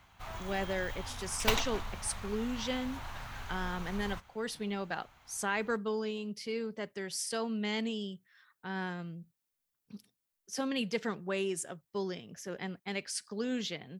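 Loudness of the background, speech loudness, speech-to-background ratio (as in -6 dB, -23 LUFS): -40.5 LUFS, -36.5 LUFS, 4.0 dB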